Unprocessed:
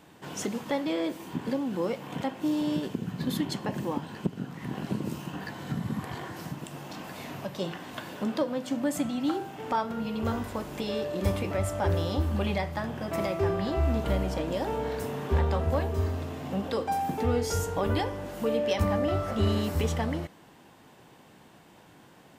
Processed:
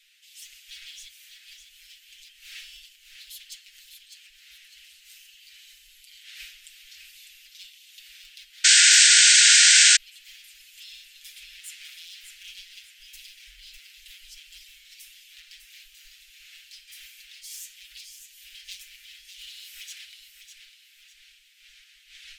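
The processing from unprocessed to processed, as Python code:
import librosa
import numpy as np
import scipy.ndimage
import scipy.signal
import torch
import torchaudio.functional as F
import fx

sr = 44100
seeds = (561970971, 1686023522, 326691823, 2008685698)

y = np.minimum(x, 2.0 * 10.0 ** (-25.5 / 20.0) - x)
y = fx.dmg_wind(y, sr, seeds[0], corner_hz=420.0, level_db=-26.0)
y = fx.echo_feedback(y, sr, ms=602, feedback_pct=36, wet_db=-8)
y = fx.spec_gate(y, sr, threshold_db=-20, keep='weak')
y = scipy.signal.sosfilt(scipy.signal.cheby2(4, 50, [110.0, 1100.0], 'bandstop', fs=sr, output='sos'), y)
y = y + 0.74 * np.pad(y, (int(6.3 * sr / 1000.0), 0))[:len(y)]
y = fx.spec_paint(y, sr, seeds[1], shape='noise', start_s=8.64, length_s=1.33, low_hz=1400.0, high_hz=8700.0, level_db=-12.0)
y = fx.low_shelf(y, sr, hz=240.0, db=11.5, at=(12.59, 14.74))
y = y * 10.0 ** (-2.5 / 20.0)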